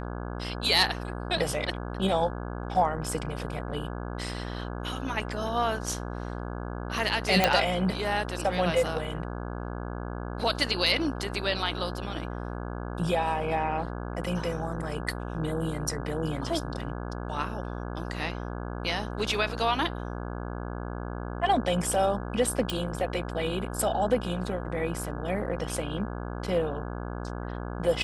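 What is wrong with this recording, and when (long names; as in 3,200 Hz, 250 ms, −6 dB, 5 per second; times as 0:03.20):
mains buzz 60 Hz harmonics 28 −35 dBFS
0:07.44: click −6 dBFS
0:22.70: click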